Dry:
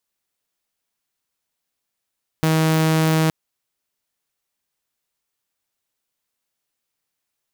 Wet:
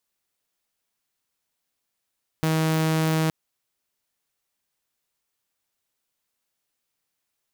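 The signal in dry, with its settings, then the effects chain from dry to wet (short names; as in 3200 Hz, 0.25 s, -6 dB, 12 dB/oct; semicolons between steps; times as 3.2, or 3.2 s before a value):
tone saw 159 Hz -12.5 dBFS 0.87 s
limiter -17.5 dBFS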